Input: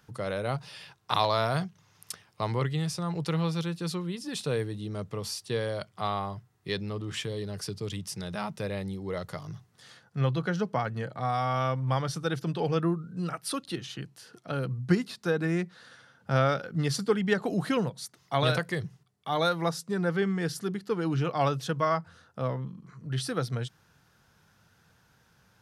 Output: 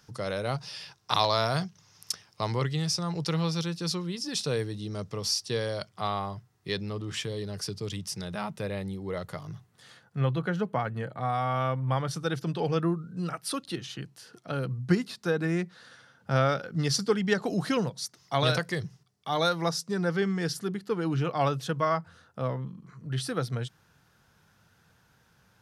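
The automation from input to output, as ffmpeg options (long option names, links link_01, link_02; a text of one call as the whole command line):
ffmpeg -i in.wav -af "asetnsamples=nb_out_samples=441:pad=0,asendcmd='5.89 equalizer g 4;8.25 equalizer g -3;10.17 equalizer g -10;12.11 equalizer g 1.5;16.72 equalizer g 8;20.53 equalizer g -1',equalizer=frequency=5400:width_type=o:width=0.67:gain=11" out.wav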